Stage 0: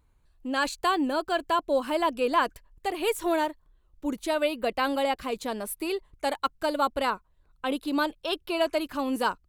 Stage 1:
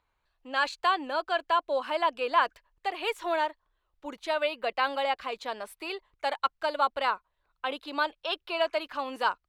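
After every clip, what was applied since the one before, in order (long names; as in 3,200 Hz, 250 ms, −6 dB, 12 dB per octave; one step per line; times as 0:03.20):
three-way crossover with the lows and the highs turned down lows −17 dB, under 540 Hz, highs −18 dB, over 5,100 Hz
level +1 dB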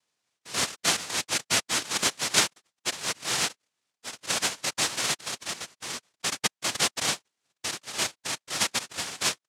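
cochlear-implant simulation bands 1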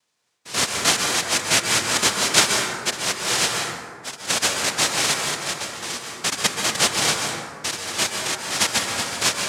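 dense smooth reverb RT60 1.9 s, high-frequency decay 0.4×, pre-delay 115 ms, DRR 1 dB
level +5.5 dB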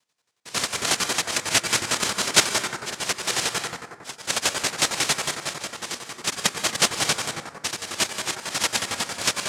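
square-wave tremolo 11 Hz, depth 65%, duty 40%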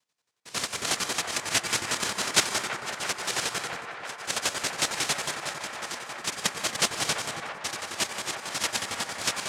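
delay with a band-pass on its return 334 ms, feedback 81%, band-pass 1,100 Hz, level −7 dB
level −5 dB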